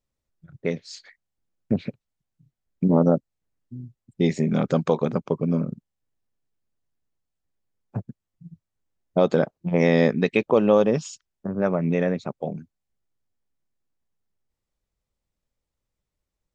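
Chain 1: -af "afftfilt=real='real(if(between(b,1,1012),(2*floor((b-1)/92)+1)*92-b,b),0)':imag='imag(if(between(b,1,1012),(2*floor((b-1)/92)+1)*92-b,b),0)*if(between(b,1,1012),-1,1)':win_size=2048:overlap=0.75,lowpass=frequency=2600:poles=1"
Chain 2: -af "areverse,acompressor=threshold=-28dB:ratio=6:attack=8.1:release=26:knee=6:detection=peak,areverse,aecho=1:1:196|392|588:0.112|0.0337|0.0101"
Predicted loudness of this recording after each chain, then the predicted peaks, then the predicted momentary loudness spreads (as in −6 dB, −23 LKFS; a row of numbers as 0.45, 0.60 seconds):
−22.0, −31.5 LKFS; −6.0, −15.5 dBFS; 17, 15 LU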